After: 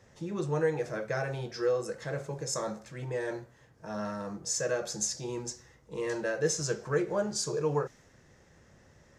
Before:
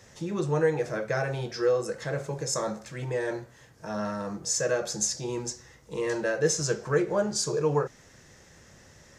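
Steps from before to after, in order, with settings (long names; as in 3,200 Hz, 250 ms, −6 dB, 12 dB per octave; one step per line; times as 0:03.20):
one half of a high-frequency compander decoder only
level −4 dB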